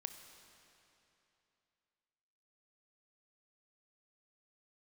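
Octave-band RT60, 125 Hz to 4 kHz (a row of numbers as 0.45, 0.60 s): 3.0, 3.0, 3.0, 3.0, 2.9, 2.7 s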